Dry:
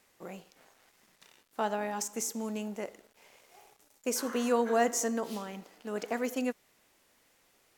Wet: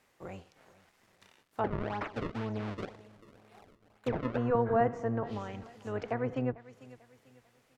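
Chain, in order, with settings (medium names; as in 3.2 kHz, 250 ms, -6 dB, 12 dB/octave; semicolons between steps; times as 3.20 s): octave divider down 1 oct, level 0 dB; feedback delay 445 ms, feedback 37%, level -20 dB; 1.64–4.38 s: decimation with a swept rate 32×, swing 160% 2 Hz; bass shelf 350 Hz -5 dB; low-pass that closes with the level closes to 1.5 kHz, closed at -29 dBFS; treble shelf 3.5 kHz -9.5 dB; trim +1.5 dB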